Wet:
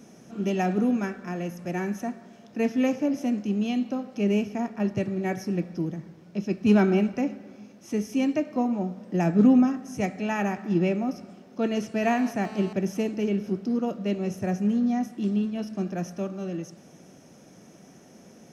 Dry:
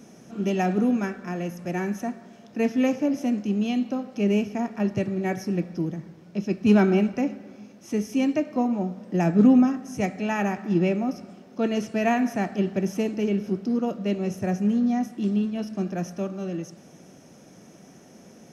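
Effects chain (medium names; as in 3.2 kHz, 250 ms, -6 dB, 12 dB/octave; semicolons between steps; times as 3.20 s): 4.56–4.97 s: tape noise reduction on one side only decoder only; 12.03–12.73 s: mobile phone buzz -41 dBFS; trim -1.5 dB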